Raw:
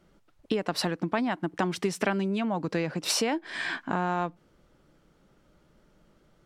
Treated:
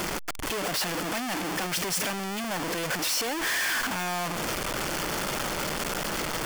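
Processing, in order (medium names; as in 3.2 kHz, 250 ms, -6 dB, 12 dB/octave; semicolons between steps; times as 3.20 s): one-bit comparator; bass shelf 350 Hz -10.5 dB; band-stop 3.9 kHz, Q 11; trim +5 dB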